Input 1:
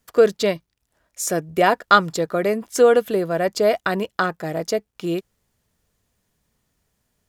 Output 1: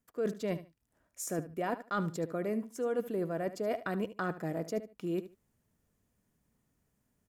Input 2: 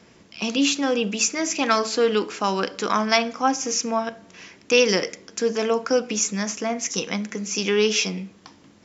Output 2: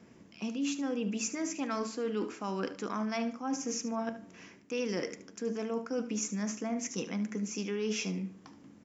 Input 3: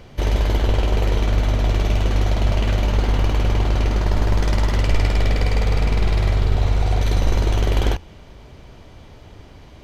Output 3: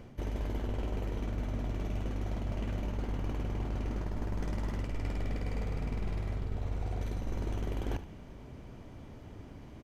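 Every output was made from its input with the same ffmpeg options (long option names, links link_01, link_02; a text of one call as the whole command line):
ffmpeg -i in.wav -af "equalizer=frequency=125:width_type=o:width=1:gain=3,equalizer=frequency=250:width_type=o:width=1:gain=7,equalizer=frequency=4000:width_type=o:width=1:gain=-7,areverse,acompressor=threshold=-23dB:ratio=6,areverse,aecho=1:1:74|148:0.2|0.0399,volume=-8dB" out.wav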